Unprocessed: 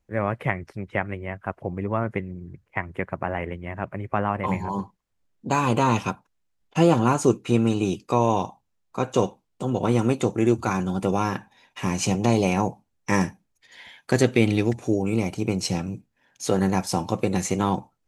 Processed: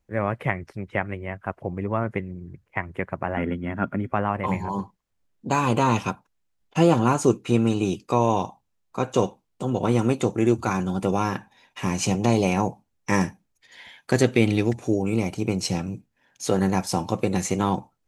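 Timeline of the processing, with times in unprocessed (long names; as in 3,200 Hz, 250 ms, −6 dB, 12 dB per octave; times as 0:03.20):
0:03.37–0:04.12: hollow resonant body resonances 240/1,400/3,300 Hz, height 15 dB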